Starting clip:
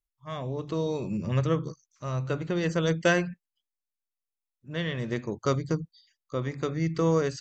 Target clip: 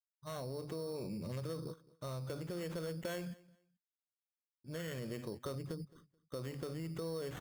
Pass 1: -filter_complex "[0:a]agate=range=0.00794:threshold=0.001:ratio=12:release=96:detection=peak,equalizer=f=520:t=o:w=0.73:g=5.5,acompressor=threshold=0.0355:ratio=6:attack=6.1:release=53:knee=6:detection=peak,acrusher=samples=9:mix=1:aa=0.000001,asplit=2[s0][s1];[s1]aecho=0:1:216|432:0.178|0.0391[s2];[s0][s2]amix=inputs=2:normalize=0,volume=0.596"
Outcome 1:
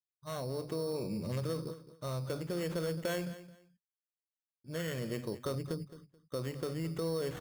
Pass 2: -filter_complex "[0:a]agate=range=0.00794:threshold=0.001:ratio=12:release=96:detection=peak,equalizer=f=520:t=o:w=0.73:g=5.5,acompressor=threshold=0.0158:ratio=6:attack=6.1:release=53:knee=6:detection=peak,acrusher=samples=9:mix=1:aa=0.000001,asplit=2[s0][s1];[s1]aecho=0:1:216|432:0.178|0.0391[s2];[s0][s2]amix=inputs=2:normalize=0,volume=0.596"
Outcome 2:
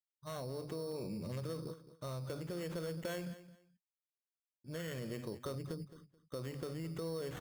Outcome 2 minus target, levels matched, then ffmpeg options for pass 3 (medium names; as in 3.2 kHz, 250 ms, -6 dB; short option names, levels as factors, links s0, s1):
echo-to-direct +7 dB
-filter_complex "[0:a]agate=range=0.00794:threshold=0.001:ratio=12:release=96:detection=peak,equalizer=f=520:t=o:w=0.73:g=5.5,acompressor=threshold=0.0158:ratio=6:attack=6.1:release=53:knee=6:detection=peak,acrusher=samples=9:mix=1:aa=0.000001,asplit=2[s0][s1];[s1]aecho=0:1:216|432:0.0794|0.0175[s2];[s0][s2]amix=inputs=2:normalize=0,volume=0.596"